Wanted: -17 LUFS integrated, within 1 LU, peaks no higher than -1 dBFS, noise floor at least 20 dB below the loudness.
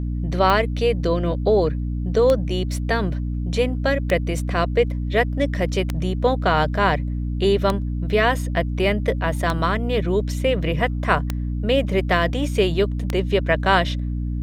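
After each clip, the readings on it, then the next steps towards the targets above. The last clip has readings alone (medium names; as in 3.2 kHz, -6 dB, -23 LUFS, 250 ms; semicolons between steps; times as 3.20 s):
clicks found 8; hum 60 Hz; highest harmonic 300 Hz; hum level -22 dBFS; loudness -21.5 LUFS; peak level -2.5 dBFS; loudness target -17.0 LUFS
-> de-click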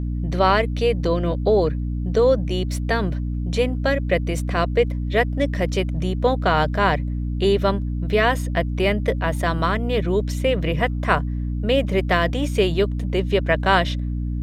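clicks found 0; hum 60 Hz; highest harmonic 300 Hz; hum level -22 dBFS
-> de-hum 60 Hz, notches 5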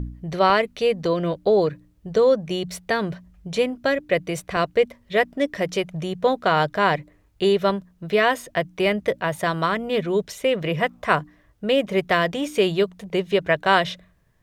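hum not found; loudness -22.5 LUFS; peak level -3.0 dBFS; loudness target -17.0 LUFS
-> trim +5.5 dB; peak limiter -1 dBFS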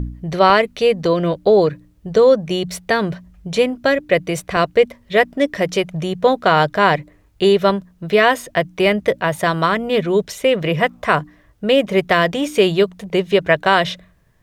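loudness -17.0 LUFS; peak level -1.0 dBFS; noise floor -54 dBFS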